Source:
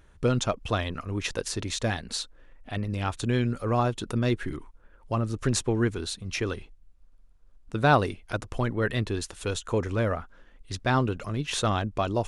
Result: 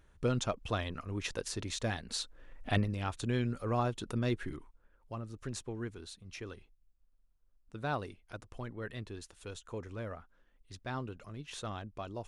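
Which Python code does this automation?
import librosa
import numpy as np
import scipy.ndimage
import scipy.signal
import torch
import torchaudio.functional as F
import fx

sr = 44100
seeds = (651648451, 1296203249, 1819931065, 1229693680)

y = fx.gain(x, sr, db=fx.line((2.05, -7.0), (2.73, 4.0), (2.95, -7.0), (4.43, -7.0), (5.24, -15.0)))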